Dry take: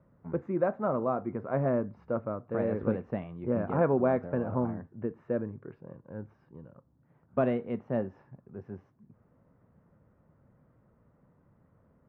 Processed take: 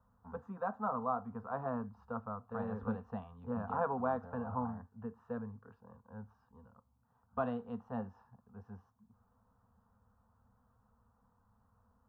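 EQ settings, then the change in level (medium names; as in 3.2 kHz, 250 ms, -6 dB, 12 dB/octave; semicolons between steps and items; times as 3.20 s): Chebyshev band-stop 210–540 Hz, order 2; static phaser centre 580 Hz, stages 6; +1.0 dB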